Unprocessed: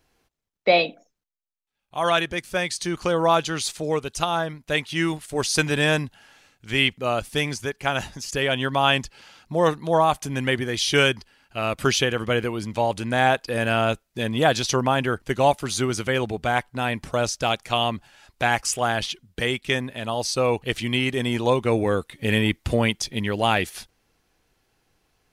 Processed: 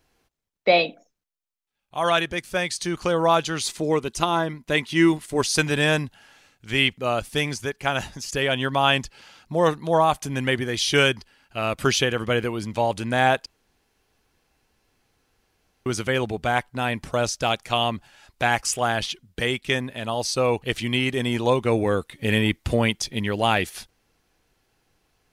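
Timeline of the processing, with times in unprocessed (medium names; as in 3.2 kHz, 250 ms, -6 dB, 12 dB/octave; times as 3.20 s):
3.63–5.42 s: small resonant body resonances 230/340/1000/2000 Hz, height 8 dB
13.46–15.86 s: room tone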